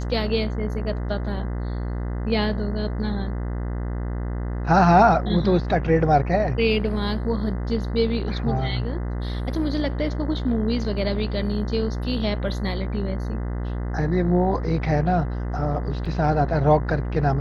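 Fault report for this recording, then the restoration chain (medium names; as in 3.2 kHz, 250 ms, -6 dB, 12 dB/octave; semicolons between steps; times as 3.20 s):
buzz 60 Hz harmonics 34 -27 dBFS
16.05–16.06 s: dropout 5.2 ms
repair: de-hum 60 Hz, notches 34; interpolate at 16.05 s, 5.2 ms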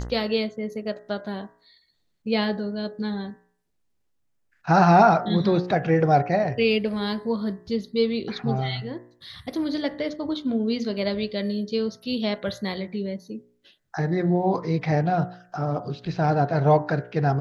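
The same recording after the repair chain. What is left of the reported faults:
nothing left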